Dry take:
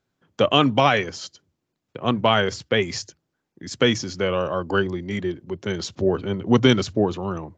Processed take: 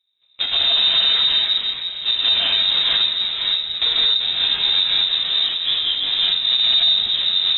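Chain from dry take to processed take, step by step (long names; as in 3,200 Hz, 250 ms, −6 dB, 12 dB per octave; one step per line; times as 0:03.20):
each half-wave held at its own peak
low shelf with overshoot 210 Hz +12.5 dB, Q 1.5
0:05.26–0:06.07: ring modulation 450 Hz
0:06.78–0:07.24: compressor whose output falls as the input rises −17 dBFS
reverb whose tail is shaped and stops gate 240 ms rising, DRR −6 dB
delay with pitch and tempo change per echo 157 ms, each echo −2 semitones, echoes 3, each echo −6 dB
voice inversion scrambler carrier 3,800 Hz
boost into a limiter −4.5 dB
level −7.5 dB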